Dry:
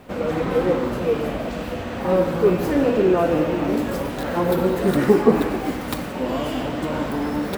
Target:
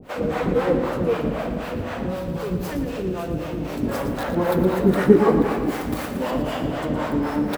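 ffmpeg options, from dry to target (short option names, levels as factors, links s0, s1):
-filter_complex "[0:a]acrossover=split=500[s0][s1];[s0]aeval=exprs='val(0)*(1-1/2+1/2*cos(2*PI*3.9*n/s))':c=same[s2];[s1]aeval=exprs='val(0)*(1-1/2-1/2*cos(2*PI*3.9*n/s))':c=same[s3];[s2][s3]amix=inputs=2:normalize=0,asettb=1/sr,asplit=3[s4][s5][s6];[s4]atrim=end=2.044[s7];[s5]atrim=start=2.04:end=3.83,asetpts=PTS-STARTPTS,afade=t=in:d=0.004:c=qsin,afade=t=out:st=1.786:d=0.004:c=qsin,acrossover=split=170|3000[s8][s9][s10];[s9]acompressor=threshold=0.02:ratio=6[s11];[s8][s11][s10]amix=inputs=3:normalize=0[s12];[s6]atrim=start=3.826[s13];[s7][s12]acrossfade=d=0.004:c1=hsin:c2=qsin[s14];[s14][s13]acrossfade=d=0.004:c1=qsin:c2=hsin,asettb=1/sr,asplit=3[s15][s16][s17];[s15]atrim=end=5.644[s18];[s16]atrim=start=5.64:end=6.31,asetpts=PTS-STARTPTS,afade=t=in:d=0.004:c=qsin,afade=t=out:st=0.666:d=0.004:c=qsin,highshelf=f=4300:g=7[s19];[s17]atrim=start=6.306[s20];[s18][s19]acrossfade=d=0.004:c1=hsin:c2=qsin[s21];[s21][s20]acrossfade=d=0.004:c1=qsin:c2=hsin,aecho=1:1:115|230|345|460|575|690|805:0.355|0.206|0.119|0.0692|0.0402|0.0233|0.0135,adynamicequalizer=threshold=0.00631:dfrequency=2000:dqfactor=0.7:tfrequency=2000:tqfactor=0.7:attack=5:release=100:ratio=0.375:range=2.5:mode=cutabove:tftype=highshelf,volume=1.78"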